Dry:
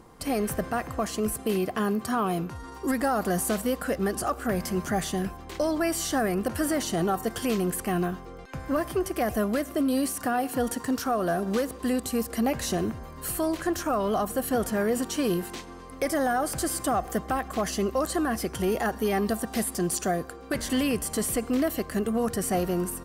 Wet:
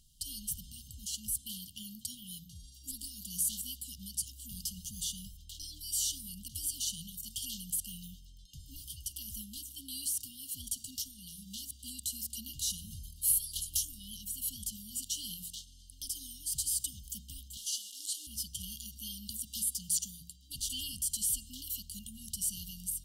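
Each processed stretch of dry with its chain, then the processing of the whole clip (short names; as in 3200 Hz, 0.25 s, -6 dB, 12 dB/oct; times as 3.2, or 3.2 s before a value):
12.7–14.17 bell 11000 Hz +9.5 dB 0.34 oct + sustainer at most 55 dB/s
17.57–18.27 delta modulation 64 kbps, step -34 dBFS + steep high-pass 290 Hz 48 dB/oct + upward compressor, threshold -28 dBFS
whole clip: passive tone stack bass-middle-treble 10-0-10; FFT band-reject 310–2800 Hz; de-hum 57.41 Hz, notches 7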